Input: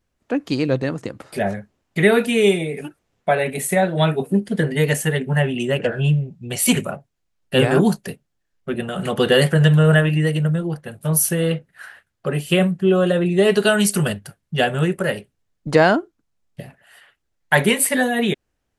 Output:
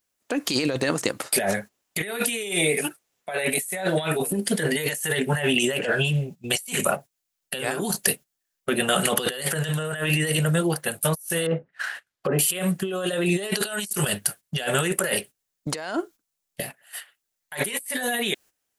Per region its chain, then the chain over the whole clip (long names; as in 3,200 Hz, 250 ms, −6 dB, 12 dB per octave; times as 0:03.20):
0:11.46–0:12.39: running median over 5 samples + treble cut that deepens with the level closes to 940 Hz, closed at −22 dBFS
whole clip: RIAA equalisation recording; noise gate −42 dBFS, range −13 dB; compressor whose output falls as the input rises −27 dBFS, ratio −1